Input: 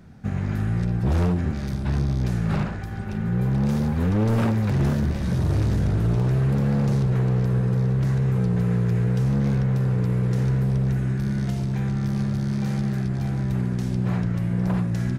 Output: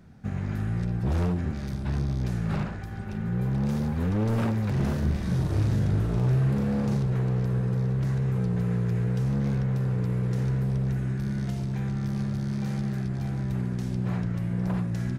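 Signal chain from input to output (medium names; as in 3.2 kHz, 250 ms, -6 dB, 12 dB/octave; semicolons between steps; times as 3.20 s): 4.73–6.97 s: doubling 39 ms -5 dB; trim -4.5 dB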